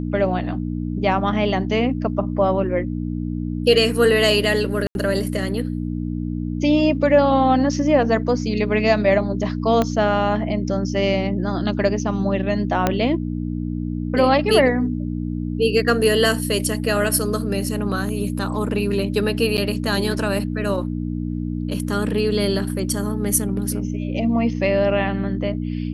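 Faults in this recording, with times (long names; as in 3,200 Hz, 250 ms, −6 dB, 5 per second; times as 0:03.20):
mains hum 60 Hz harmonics 5 −25 dBFS
0:04.87–0:04.95: drop-out 81 ms
0:09.82: click −7 dBFS
0:12.87: click −4 dBFS
0:19.57–0:19.58: drop-out 9.1 ms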